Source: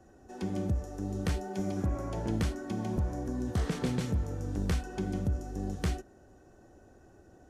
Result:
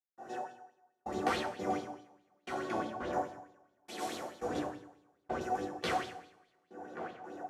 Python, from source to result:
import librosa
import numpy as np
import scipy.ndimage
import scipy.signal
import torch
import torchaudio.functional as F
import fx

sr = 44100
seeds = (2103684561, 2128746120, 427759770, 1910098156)

p1 = fx.octave_divider(x, sr, octaves=1, level_db=3.0)
p2 = fx.differentiator(p1, sr, at=(3.24, 4.34))
p3 = p2 + fx.echo_tape(p2, sr, ms=565, feedback_pct=72, wet_db=-8, lp_hz=1900.0, drive_db=13.0, wow_cents=12, dry=0)
p4 = fx.step_gate(p3, sr, bpm=85, pattern='.x....xx', floor_db=-60.0, edge_ms=4.5)
p5 = scipy.signal.sosfilt(scipy.signal.butter(2, 510.0, 'highpass', fs=sr, output='sos'), p4)
p6 = fx.high_shelf(p5, sr, hz=2300.0, db=-10.0)
p7 = fx.rev_double_slope(p6, sr, seeds[0], early_s=0.73, late_s=2.2, knee_db=-27, drr_db=-6.5)
p8 = fx.rider(p7, sr, range_db=3, speed_s=0.5)
p9 = fx.bell_lfo(p8, sr, hz=4.7, low_hz=760.0, high_hz=4000.0, db=13)
y = p9 * 10.0 ** (1.5 / 20.0)